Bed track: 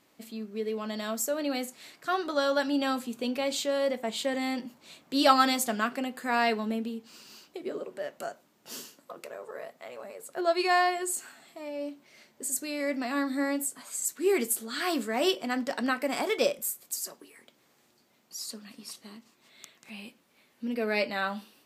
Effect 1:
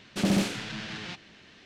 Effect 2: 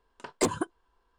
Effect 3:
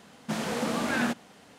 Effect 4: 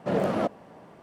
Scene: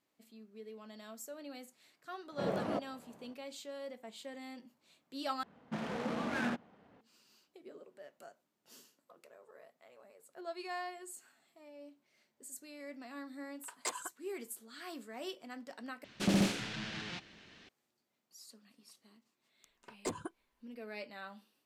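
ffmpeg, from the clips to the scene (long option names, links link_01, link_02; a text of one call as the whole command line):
ffmpeg -i bed.wav -i cue0.wav -i cue1.wav -i cue2.wav -i cue3.wav -filter_complex "[2:a]asplit=2[link_01][link_02];[0:a]volume=-17dB[link_03];[3:a]adynamicsmooth=sensitivity=5.5:basefreq=1700[link_04];[link_01]highpass=960[link_05];[1:a]bandreject=frequency=50:width_type=h:width=6,bandreject=frequency=100:width_type=h:width=6[link_06];[link_03]asplit=3[link_07][link_08][link_09];[link_07]atrim=end=5.434[link_10];[link_04]atrim=end=1.58,asetpts=PTS-STARTPTS,volume=-7.5dB[link_11];[link_08]atrim=start=7.006:end=16.044[link_12];[link_06]atrim=end=1.65,asetpts=PTS-STARTPTS,volume=-4.5dB[link_13];[link_09]atrim=start=17.686[link_14];[4:a]atrim=end=1.02,asetpts=PTS-STARTPTS,volume=-10dB,afade=type=in:duration=0.004:curve=hsin,afade=type=out:start_time=1.016:duration=0.004:curve=hsin,adelay=2320[link_15];[link_05]atrim=end=1.18,asetpts=PTS-STARTPTS,volume=-6.5dB,afade=type=in:duration=0.004:curve=hsin,afade=type=out:start_time=1.176:duration=0.004:curve=hsin,adelay=13440[link_16];[link_02]atrim=end=1.18,asetpts=PTS-STARTPTS,volume=-12.5dB,afade=type=in:duration=0.004:curve=hsin,afade=type=out:start_time=1.176:duration=0.004:curve=hsin,adelay=19640[link_17];[link_10][link_11]acrossfade=duration=0.004:curve1=hsin:curve2=hsin[link_18];[link_18][link_12]acrossfade=duration=0.004:curve1=hsin:curve2=hsin[link_19];[link_19][link_13]acrossfade=duration=0.004:curve1=hsin:curve2=hsin[link_20];[link_20][link_14]acrossfade=duration=0.004:curve1=hsin:curve2=hsin[link_21];[link_21][link_15][link_16][link_17]amix=inputs=4:normalize=0" out.wav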